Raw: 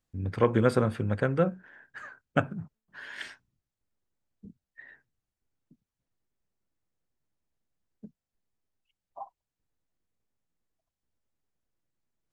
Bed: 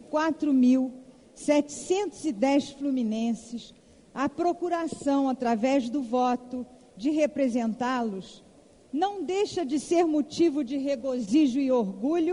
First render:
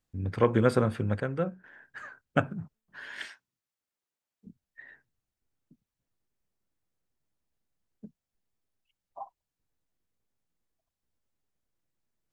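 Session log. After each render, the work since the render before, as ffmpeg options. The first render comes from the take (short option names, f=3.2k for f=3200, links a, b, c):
-filter_complex "[0:a]asettb=1/sr,asplit=3[a][b][c];[a]atrim=end=3.254[d];[b]atrim=start=3.25:end=4.47,asetpts=PTS-STARTPTS,afade=t=in:d=0.004:c=qsin,afade=t=out:st=1.216:d=0.004:c=qsin,highpass=f=780:p=1[e];[c]atrim=start=4.466[f];[d][e]acrossfade=d=0.004:c1=hsin:c2=qsin[g];[g][f]acrossfade=d=0.004:c1=qsin:c2=hsin,asplit=3[h][i][j];[h]atrim=end=1.202[k];[i]atrim=start=1.198:end=1.642,asetpts=PTS-STARTPTS,volume=-5dB[l];[j]atrim=start=1.638[m];[k][l]acrossfade=d=0.004:c1=hsin:c2=hsin[n];[n][m]acrossfade=d=0.004:c1=hsin:c2=hsin"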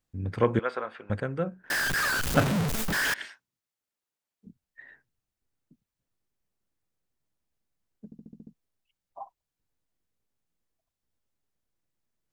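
-filter_complex "[0:a]asettb=1/sr,asplit=3[a][b][c];[a]atrim=end=0.594[d];[b]atrim=start=0.59:end=1.1,asetpts=PTS-STARTPTS,afade=t=in:d=0.004:c=qsin,afade=t=out:st=0.506:d=0.004:c=qsin,highpass=740,lowpass=3k[e];[c]atrim=start=1.096[f];[d][e]acrossfade=d=0.004:c1=hsin:c2=qsin[g];[g][f]acrossfade=d=0.004:c1=qsin:c2=hsin,asettb=1/sr,asplit=3[h][i][j];[h]atrim=end=1.704[k];[i]atrim=start=1.7:end=3.14,asetpts=PTS-STARTPTS,afade=t=in:d=0.004:c=qsin,afade=t=out:st=1.436:d=0.004:c=qsin,aeval=exprs='val(0)+0.5*0.0841*sgn(val(0))':c=same[l];[j]atrim=start=3.136[m];[k][l]acrossfade=d=0.004:c1=hsin:c2=qsin[n];[n][m]acrossfade=d=0.004:c1=qsin:c2=hsin,asplit=8[o][p][q][r][s][t][u][v];[o]atrim=end=8.122[w];[p]atrim=start=8.048:end=8.122[x];[q]atrim=start=8.048:end=8.122[y];[r]atrim=start=8.048:end=8.122[z];[s]atrim=start=8.048:end=8.122[aa];[t]atrim=start=8.048:end=8.122[ab];[u]atrim=start=8.048:end=8.122[ac];[v]atrim=start=8.538[ad];[w][x]acrossfade=d=0.004:c1=hsin:c2=hsin[ae];[ae][y]acrossfade=d=0.004:c1=hsin:c2=hsin[af];[af][z]acrossfade=d=0.004:c1=hsin:c2=hsin[ag];[ag][aa]acrossfade=d=0.004:c1=hsin:c2=hsin[ah];[ah][ab]acrossfade=d=0.004:c1=hsin:c2=hsin[ai];[ai][ac]acrossfade=d=0.004:c1=hsin:c2=hsin[aj];[aj][ad]acrossfade=d=0.004:c1=hsin:c2=hsin"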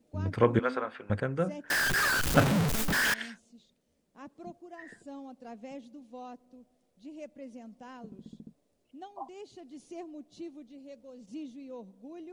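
-filter_complex "[1:a]volume=-20dB[a];[0:a][a]amix=inputs=2:normalize=0"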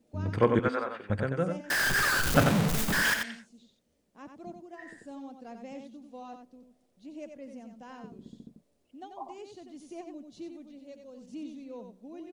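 -af "aecho=1:1:91:0.501"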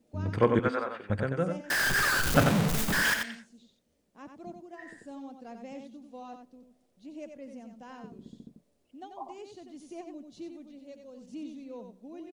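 -filter_complex "[0:a]asplit=2[a][b];[b]adelay=116.6,volume=-27dB,highshelf=f=4k:g=-2.62[c];[a][c]amix=inputs=2:normalize=0"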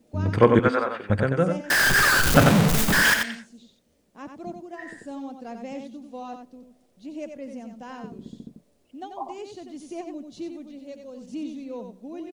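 -af "volume=7.5dB,alimiter=limit=-1dB:level=0:latency=1"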